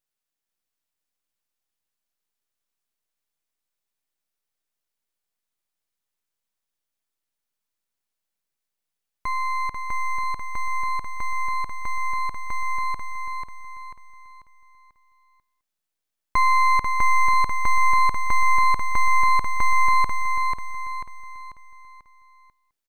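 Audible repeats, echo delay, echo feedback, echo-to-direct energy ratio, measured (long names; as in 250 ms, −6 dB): 4, 491 ms, 41%, −4.0 dB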